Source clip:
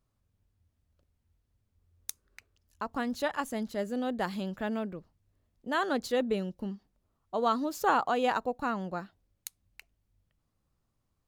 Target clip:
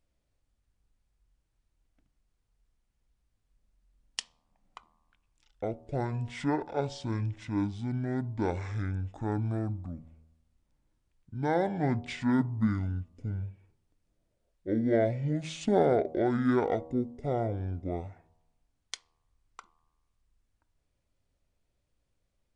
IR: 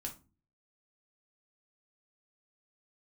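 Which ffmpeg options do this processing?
-filter_complex "[0:a]bandreject=frequency=159.8:width_type=h:width=4,bandreject=frequency=319.6:width_type=h:width=4,bandreject=frequency=479.4:width_type=h:width=4,bandreject=frequency=639.2:width_type=h:width=4,bandreject=frequency=799:width_type=h:width=4,bandreject=frequency=958.8:width_type=h:width=4,bandreject=frequency=1118.6:width_type=h:width=4,bandreject=frequency=1278.4:width_type=h:width=4,bandreject=frequency=1438.2:width_type=h:width=4,bandreject=frequency=1598:width_type=h:width=4,bandreject=frequency=1757.8:width_type=h:width=4,bandreject=frequency=1917.6:width_type=h:width=4,bandreject=frequency=2077.4:width_type=h:width=4,bandreject=frequency=2237.2:width_type=h:width=4,bandreject=frequency=2397:width_type=h:width=4,asetrate=22050,aresample=44100,asplit=2[link_01][link_02];[1:a]atrim=start_sample=2205,lowpass=3600[link_03];[link_02][link_03]afir=irnorm=-1:irlink=0,volume=-12.5dB[link_04];[link_01][link_04]amix=inputs=2:normalize=0"

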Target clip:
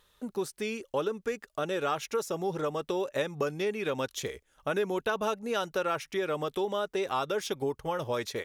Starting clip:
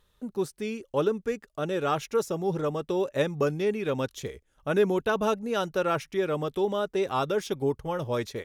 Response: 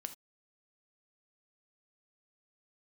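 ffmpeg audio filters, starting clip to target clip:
-af "lowshelf=frequency=360:gain=-10,acompressor=threshold=-35dB:ratio=2.5,volume=5.5dB"

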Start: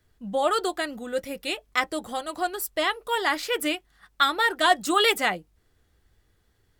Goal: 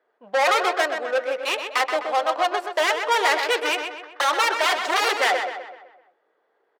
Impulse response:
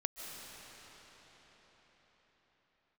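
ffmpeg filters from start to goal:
-filter_complex "[0:a]aeval=exprs='0.447*sin(PI/2*6.31*val(0)/0.447)':channel_layout=same,adynamicsmooth=sensitivity=0.5:basefreq=1000,highpass=frequency=500:width=0.5412,highpass=frequency=500:width=1.3066,asplit=2[link_01][link_02];[link_02]adelay=127,lowpass=frequency=3800:poles=1,volume=-6dB,asplit=2[link_03][link_04];[link_04]adelay=127,lowpass=frequency=3800:poles=1,volume=0.49,asplit=2[link_05][link_06];[link_06]adelay=127,lowpass=frequency=3800:poles=1,volume=0.49,asplit=2[link_07][link_08];[link_08]adelay=127,lowpass=frequency=3800:poles=1,volume=0.49,asplit=2[link_09][link_10];[link_10]adelay=127,lowpass=frequency=3800:poles=1,volume=0.49,asplit=2[link_11][link_12];[link_12]adelay=127,lowpass=frequency=3800:poles=1,volume=0.49[link_13];[link_03][link_05][link_07][link_09][link_11][link_13]amix=inputs=6:normalize=0[link_14];[link_01][link_14]amix=inputs=2:normalize=0,volume=-7dB"

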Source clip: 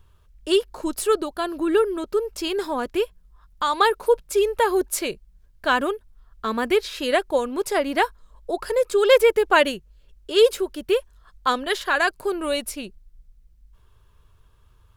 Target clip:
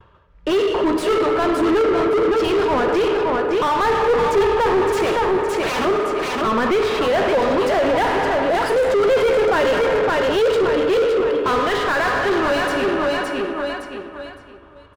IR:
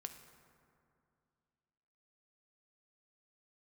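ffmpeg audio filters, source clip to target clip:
-filter_complex "[0:a]asettb=1/sr,asplit=3[link_01][link_02][link_03];[link_01]atrim=end=5.064[link_04];[link_02]atrim=start=5.06:end=5.85,asetpts=PTS-STARTPTS,afade=type=in:duration=0.004:curve=qsin,afade=type=out:start_time=0.786:duration=0.004:curve=qsin,aeval=exprs='(mod(11.9*val(0)+1,2)-1)/11.9':channel_layout=same[link_05];[link_03]atrim=start=5.846[link_06];[link_04][link_05]acrossfade=duration=0.004:curve1=hsin:curve2=qsin[link_07];[link_07][link_06]acrossfade=duration=0.004:curve1=qsin:curve2=hsin,asettb=1/sr,asplit=3[link_08][link_09][link_10];[link_08]atrim=end=7.984[link_11];[link_09]atrim=start=7.98:end=8.85,asetpts=PTS-STARTPTS,afade=type=in:duration=0.004:curve=qsin,afade=type=out:start_time=0.866:duration=0.004:curve=qsin,equalizer=frequency=10000:width=0.49:gain=14.5[link_12];[link_10]atrim=start=8.846[link_13];[link_11][link_12]acrossfade=duration=0.004:curve1=hsin:curve2=qsin[link_14];[link_14][link_13]acrossfade=duration=0.004:curve1=qsin:curve2=hsin,adynamicsmooth=sensitivity=6:basefreq=3600,aecho=1:1:564|1128|1692|2256:0.398|0.119|0.0358|0.0107,agate=range=-33dB:threshold=-49dB:ratio=3:detection=peak,bandreject=frequency=211:width_type=h:width=4,bandreject=frequency=422:width_type=h:width=4,bandreject=frequency=633:width_type=h:width=4,bandreject=frequency=844:width_type=h:width=4,bandreject=frequency=1055:width_type=h:width=4,bandreject=frequency=1266:width_type=h:width=4,bandreject=frequency=1477:width_type=h:width=4,bandreject=frequency=1688:width_type=h:width=4,bandreject=frequency=1899:width_type=h:width=4,bandreject=frequency=2110:width_type=h:width=4,bandreject=frequency=2321:width_type=h:width=4,bandreject=frequency=2532:width_type=h:width=4,bandreject=frequency=2743:width_type=h:width=4,bandreject=frequency=2954:width_type=h:width=4,bandreject=frequency=3165:width_type=h:width=4,bandreject=frequency=3376:width_type=h:width=4,bandreject=frequency=3587:width_type=h:width=4,bandreject=frequency=3798:width_type=h:width=4,bandreject=frequency=4009:width_type=h:width=4,bandreject=frequency=4220:width_type=h:width=4,bandreject=frequency=4431:width_type=h:width=4,bandreject=frequency=4642:width_type=h:width=4,bandreject=frequency=4853:width_type=h:width=4,bandreject=frequency=5064:width_type=h:width=4,bandreject=frequency=5275:width_type=h:width=4,bandreject=frequency=5486:width_type=h:width=4,bandreject=frequency=5697:width_type=h:width=4,bandreject=frequency=5908:width_type=h:width=4,bandreject=frequency=6119:width_type=h:width=4,bandreject=frequency=6330:width_type=h:width=4,bandreject=frequency=6541:width_type=h:width=4,bandreject=frequency=6752:width_type=h:width=4,bandreject=frequency=6963:width_type=h:width=4,bandreject=frequency=7174:width_type=h:width=4,bandreject=frequency=7385:width_type=h:width=4,bandreject=frequency=7596:width_type=h:width=4,bandreject=frequency=7807:width_type=h:width=4,bandreject=frequency=8018:width_type=h:width=4,bandreject=frequency=8229:width_type=h:width=4,bandreject=frequency=8440:width_type=h:width=4[link_15];[1:a]atrim=start_sample=2205,asetrate=52920,aresample=44100[link_16];[link_15][link_16]afir=irnorm=-1:irlink=0,asoftclip=type=tanh:threshold=-15dB,asettb=1/sr,asplit=3[link_17][link_18][link_19];[link_17]atrim=end=4.024[link_20];[link_18]atrim=start=4.02:end=4.44,asetpts=PTS-STARTPTS,afade=type=in:duration=0.004:curve=qsin,afade=type=out:start_time=0.416:duration=0.004:curve=qsin,equalizer=frequency=380:width=1.5:gain=5.5[link_21];[link_19]atrim=start=4.436[link_22];[link_20][link_21]acrossfade=duration=0.004:curve1=hsin:curve2=qsin[link_23];[link_23][link_22]acrossfade=duration=0.004:curve1=qsin:curve2=hsin,asplit=2[link_24][link_25];[link_25]highpass=frequency=720:poles=1,volume=34dB,asoftclip=type=tanh:threshold=-13dB[link_26];[link_24][link_26]amix=inputs=2:normalize=0,lowpass=frequency=1000:poles=1,volume=-6dB,volume=4dB"

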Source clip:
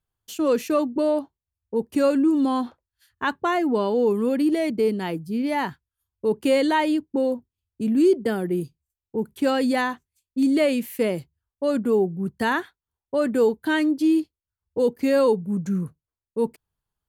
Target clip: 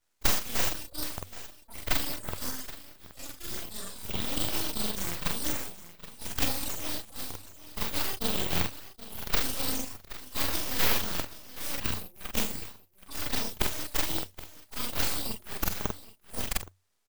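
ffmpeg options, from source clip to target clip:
ffmpeg -i in.wav -filter_complex "[0:a]afftfilt=real='re':imag='-im':win_size=4096:overlap=0.75,acrossover=split=1100|4300[link_01][link_02][link_03];[link_01]acompressor=threshold=-33dB:ratio=4[link_04];[link_02]acompressor=threshold=-39dB:ratio=4[link_05];[link_03]acompressor=threshold=-49dB:ratio=4[link_06];[link_04][link_05][link_06]amix=inputs=3:normalize=0,agate=range=-10dB:threshold=-56dB:ratio=16:detection=peak,aemphasis=mode=production:type=riaa,acompressor=threshold=-38dB:ratio=12,afftdn=noise_reduction=12:noise_floor=-55,aecho=1:1:774:0.168,aexciter=amount=12.2:drive=6.2:freq=3200,flanger=delay=0.2:depth=4.7:regen=30:speed=0.91:shape=sinusoidal,aeval=exprs='abs(val(0))':channel_layout=same,equalizer=frequency=93:width=8:gain=11,volume=-2dB" out.wav

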